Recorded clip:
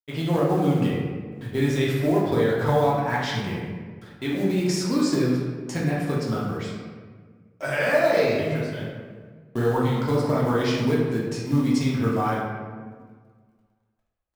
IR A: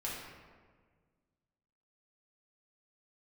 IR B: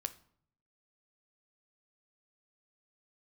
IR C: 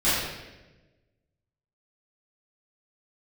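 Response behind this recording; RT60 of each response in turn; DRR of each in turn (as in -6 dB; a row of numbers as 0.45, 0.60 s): A; 1.6, 0.60, 1.1 s; -6.5, 10.5, -16.0 dB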